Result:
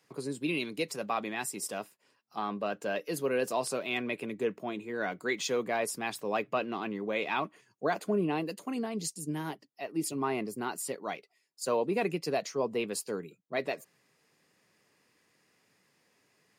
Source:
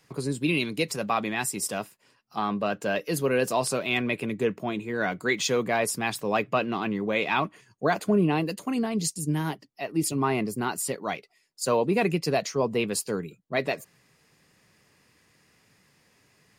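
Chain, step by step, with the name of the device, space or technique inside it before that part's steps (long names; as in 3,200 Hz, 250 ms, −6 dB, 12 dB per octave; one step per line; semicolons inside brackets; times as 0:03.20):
filter by subtraction (in parallel: low-pass filter 370 Hz 12 dB per octave + polarity inversion)
on the sum: level −7 dB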